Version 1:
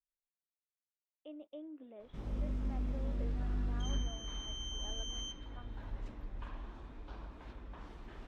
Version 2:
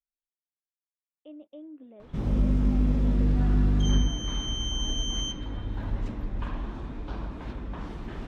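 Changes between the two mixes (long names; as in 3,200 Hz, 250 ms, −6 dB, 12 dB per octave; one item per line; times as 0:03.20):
background +10.5 dB
master: add parametric band 160 Hz +7.5 dB 2.1 octaves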